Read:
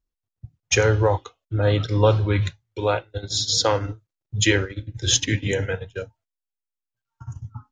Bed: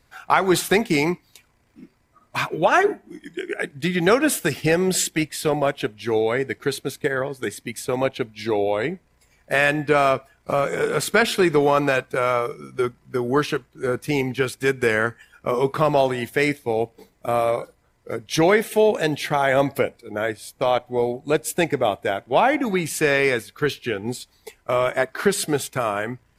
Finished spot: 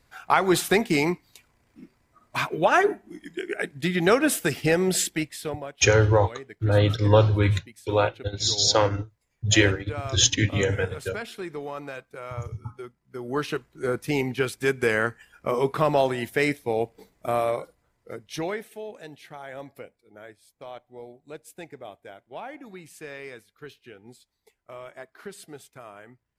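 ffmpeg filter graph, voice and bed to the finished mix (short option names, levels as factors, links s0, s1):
-filter_complex "[0:a]adelay=5100,volume=1[s0];[1:a]volume=3.76,afade=t=out:st=4.97:d=0.71:silence=0.188365,afade=t=in:st=13.06:d=0.63:silence=0.199526,afade=t=out:st=17.25:d=1.53:silence=0.133352[s1];[s0][s1]amix=inputs=2:normalize=0"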